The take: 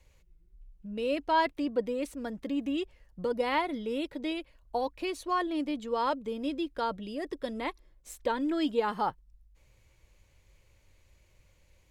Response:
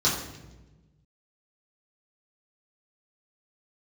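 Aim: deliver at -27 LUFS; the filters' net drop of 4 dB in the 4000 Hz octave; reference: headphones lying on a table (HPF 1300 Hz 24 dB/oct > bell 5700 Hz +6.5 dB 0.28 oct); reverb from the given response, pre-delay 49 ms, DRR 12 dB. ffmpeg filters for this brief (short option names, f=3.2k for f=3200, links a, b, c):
-filter_complex "[0:a]equalizer=f=4k:t=o:g=-6,asplit=2[a][b];[1:a]atrim=start_sample=2205,adelay=49[c];[b][c]afir=irnorm=-1:irlink=0,volume=-25dB[d];[a][d]amix=inputs=2:normalize=0,highpass=f=1.3k:w=0.5412,highpass=f=1.3k:w=1.3066,equalizer=f=5.7k:t=o:w=0.28:g=6.5,volume=15.5dB"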